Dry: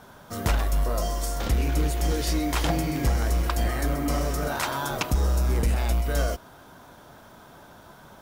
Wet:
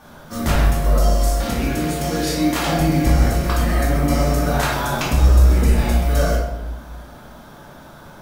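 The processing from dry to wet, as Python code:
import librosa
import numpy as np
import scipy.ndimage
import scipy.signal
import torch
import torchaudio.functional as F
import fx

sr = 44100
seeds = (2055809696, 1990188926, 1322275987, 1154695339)

y = fx.highpass(x, sr, hz=120.0, slope=12, at=(1.3, 2.79))
y = fx.room_shoebox(y, sr, seeds[0], volume_m3=340.0, walls='mixed', distance_m=2.4)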